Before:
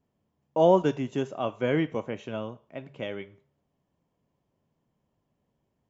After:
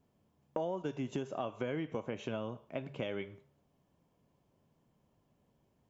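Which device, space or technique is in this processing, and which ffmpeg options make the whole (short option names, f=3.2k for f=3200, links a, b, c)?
serial compression, peaks first: -af "bandreject=f=1.9k:w=19,acompressor=threshold=-32dB:ratio=4,acompressor=threshold=-38dB:ratio=2.5,volume=3dB"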